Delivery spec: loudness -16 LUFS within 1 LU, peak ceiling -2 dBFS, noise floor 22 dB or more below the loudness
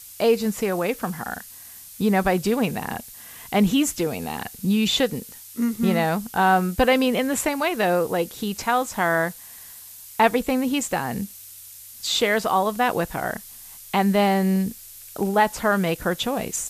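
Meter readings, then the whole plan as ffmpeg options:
noise floor -43 dBFS; noise floor target -45 dBFS; loudness -22.5 LUFS; peak -5.0 dBFS; loudness target -16.0 LUFS
-> -af "afftdn=nr=6:nf=-43"
-af "volume=6.5dB,alimiter=limit=-2dB:level=0:latency=1"

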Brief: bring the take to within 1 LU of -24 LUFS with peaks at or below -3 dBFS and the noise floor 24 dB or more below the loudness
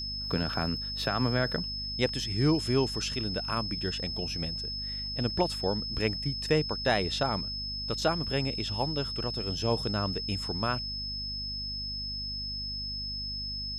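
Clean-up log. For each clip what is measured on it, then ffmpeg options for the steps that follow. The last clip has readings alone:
hum 50 Hz; harmonics up to 250 Hz; hum level -39 dBFS; steady tone 5200 Hz; tone level -34 dBFS; loudness -30.5 LUFS; peak -13.0 dBFS; loudness target -24.0 LUFS
-> -af "bandreject=f=50:t=h:w=4,bandreject=f=100:t=h:w=4,bandreject=f=150:t=h:w=4,bandreject=f=200:t=h:w=4,bandreject=f=250:t=h:w=4"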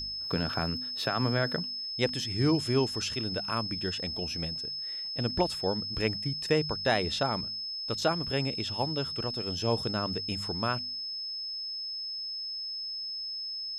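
hum none; steady tone 5200 Hz; tone level -34 dBFS
-> -af "bandreject=f=5.2k:w=30"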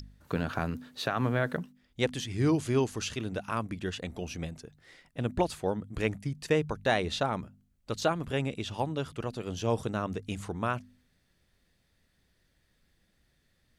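steady tone none; loudness -32.0 LUFS; peak -13.5 dBFS; loudness target -24.0 LUFS
-> -af "volume=8dB"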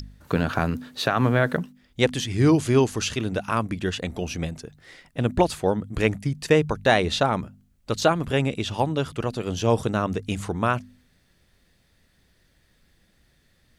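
loudness -24.0 LUFS; peak -5.5 dBFS; noise floor -64 dBFS

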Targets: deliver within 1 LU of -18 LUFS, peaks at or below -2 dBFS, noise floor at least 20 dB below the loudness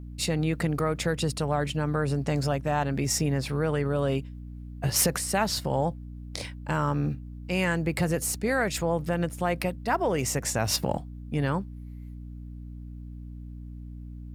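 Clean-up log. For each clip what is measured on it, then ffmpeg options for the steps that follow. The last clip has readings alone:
hum 60 Hz; harmonics up to 300 Hz; hum level -37 dBFS; loudness -27.5 LUFS; peak -10.0 dBFS; loudness target -18.0 LUFS
-> -af "bandreject=f=60:t=h:w=6,bandreject=f=120:t=h:w=6,bandreject=f=180:t=h:w=6,bandreject=f=240:t=h:w=6,bandreject=f=300:t=h:w=6"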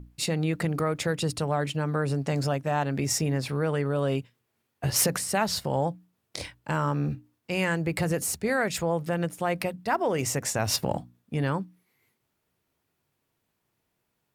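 hum none; loudness -28.0 LUFS; peak -10.0 dBFS; loudness target -18.0 LUFS
-> -af "volume=10dB,alimiter=limit=-2dB:level=0:latency=1"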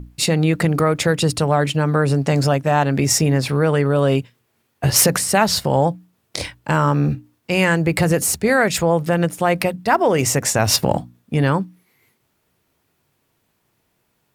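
loudness -18.0 LUFS; peak -2.0 dBFS; noise floor -68 dBFS

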